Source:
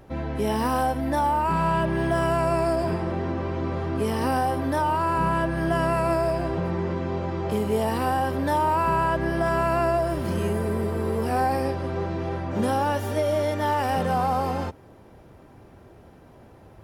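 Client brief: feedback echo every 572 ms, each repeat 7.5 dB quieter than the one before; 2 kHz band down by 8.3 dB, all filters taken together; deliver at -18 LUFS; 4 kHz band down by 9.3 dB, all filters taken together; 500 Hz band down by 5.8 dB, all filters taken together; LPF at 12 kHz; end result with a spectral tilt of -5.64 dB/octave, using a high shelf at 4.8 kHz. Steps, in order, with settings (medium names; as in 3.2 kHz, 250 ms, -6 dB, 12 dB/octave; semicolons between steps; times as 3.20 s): low-pass 12 kHz; peaking EQ 500 Hz -7.5 dB; peaking EQ 2 kHz -8.5 dB; peaking EQ 4 kHz -8 dB; treble shelf 4.8 kHz -3.5 dB; feedback delay 572 ms, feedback 42%, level -7.5 dB; trim +9.5 dB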